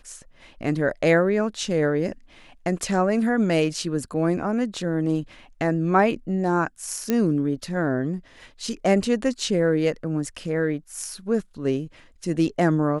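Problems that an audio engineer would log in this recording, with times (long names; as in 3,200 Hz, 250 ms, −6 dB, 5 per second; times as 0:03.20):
0:07.10: click −9 dBFS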